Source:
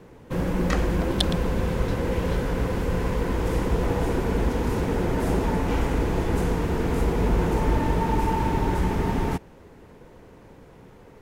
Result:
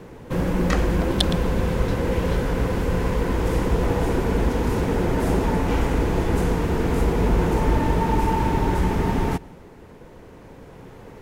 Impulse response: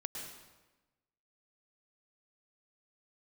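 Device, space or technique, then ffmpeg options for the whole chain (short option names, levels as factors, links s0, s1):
ducked reverb: -filter_complex "[0:a]asplit=3[s0][s1][s2];[1:a]atrim=start_sample=2205[s3];[s1][s3]afir=irnorm=-1:irlink=0[s4];[s2]apad=whole_len=494755[s5];[s4][s5]sidechaincompress=threshold=0.00708:ratio=5:attack=16:release=1190,volume=1.06[s6];[s0][s6]amix=inputs=2:normalize=0,volume=1.26"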